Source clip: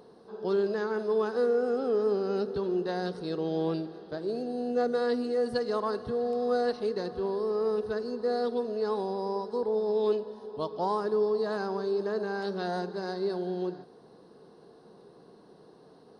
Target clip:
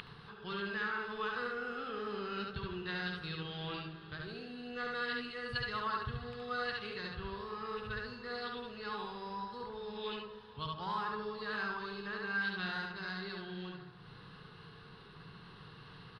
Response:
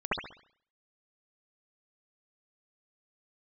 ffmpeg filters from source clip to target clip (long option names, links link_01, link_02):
-filter_complex "[0:a]highshelf=frequency=3100:gain=-8.5,aecho=1:1:70:0.708,asplit=2[link_01][link_02];[1:a]atrim=start_sample=2205,lowpass=1300,adelay=8[link_03];[link_02][link_03]afir=irnorm=-1:irlink=0,volume=-14.5dB[link_04];[link_01][link_04]amix=inputs=2:normalize=0,acompressor=mode=upward:threshold=-33dB:ratio=2.5,firequalizer=gain_entry='entry(110,0);entry(230,-19);entry(590,-27);entry(1200,-3);entry(2800,9);entry(5800,-12)':delay=0.05:min_phase=1,volume=4dB"